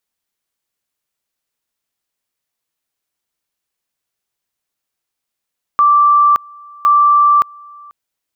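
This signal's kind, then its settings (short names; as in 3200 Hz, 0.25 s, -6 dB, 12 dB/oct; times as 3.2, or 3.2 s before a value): two-level tone 1170 Hz -6.5 dBFS, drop 27.5 dB, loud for 0.57 s, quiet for 0.49 s, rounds 2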